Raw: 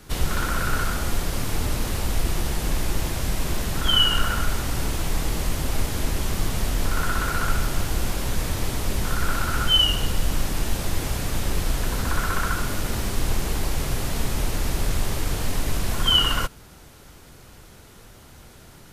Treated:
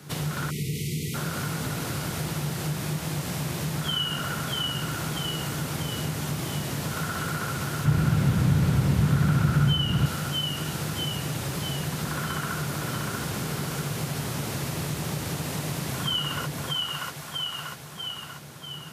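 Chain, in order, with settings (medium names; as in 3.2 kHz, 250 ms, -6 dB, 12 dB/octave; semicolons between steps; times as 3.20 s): high-pass 100 Hz 24 dB/octave; peaking EQ 150 Hz +13 dB 0.28 oct; two-band feedback delay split 590 Hz, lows 234 ms, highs 640 ms, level -4 dB; 0.50–1.14 s: spectral selection erased 490–1900 Hz; compression 2.5:1, threshold -29 dBFS, peak gain reduction 10 dB; 7.85–10.06 s: tone controls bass +13 dB, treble -5 dB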